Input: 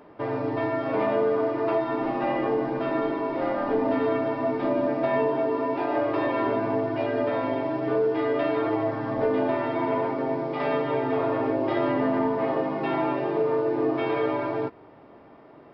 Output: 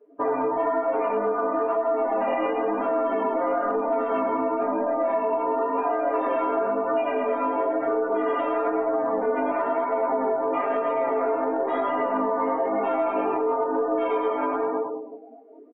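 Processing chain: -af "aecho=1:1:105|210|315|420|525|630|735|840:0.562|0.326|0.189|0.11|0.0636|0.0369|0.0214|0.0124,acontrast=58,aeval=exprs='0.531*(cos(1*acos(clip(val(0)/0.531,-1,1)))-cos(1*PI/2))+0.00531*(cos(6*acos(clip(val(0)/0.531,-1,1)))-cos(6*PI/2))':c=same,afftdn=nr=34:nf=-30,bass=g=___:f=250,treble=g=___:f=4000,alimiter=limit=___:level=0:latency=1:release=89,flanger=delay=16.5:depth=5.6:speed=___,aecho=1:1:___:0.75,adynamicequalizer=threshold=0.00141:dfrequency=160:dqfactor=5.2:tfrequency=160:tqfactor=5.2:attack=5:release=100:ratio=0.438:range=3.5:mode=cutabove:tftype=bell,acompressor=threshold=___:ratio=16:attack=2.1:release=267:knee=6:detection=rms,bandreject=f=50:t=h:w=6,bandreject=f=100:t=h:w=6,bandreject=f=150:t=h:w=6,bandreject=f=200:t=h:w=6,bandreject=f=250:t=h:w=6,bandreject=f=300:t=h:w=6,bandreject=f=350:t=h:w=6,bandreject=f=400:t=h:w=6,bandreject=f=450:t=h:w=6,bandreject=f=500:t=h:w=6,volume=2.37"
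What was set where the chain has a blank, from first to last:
-13, -15, 0.158, 1, 4.2, 0.0562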